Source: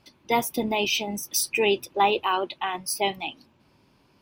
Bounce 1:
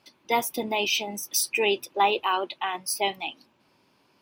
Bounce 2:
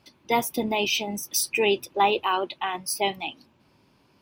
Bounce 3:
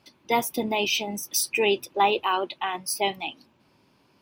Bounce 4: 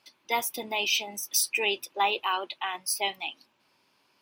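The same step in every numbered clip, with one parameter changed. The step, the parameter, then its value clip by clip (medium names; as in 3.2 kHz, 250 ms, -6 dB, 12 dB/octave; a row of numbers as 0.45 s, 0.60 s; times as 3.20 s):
high-pass, cutoff frequency: 350 Hz, 50 Hz, 130 Hz, 1.2 kHz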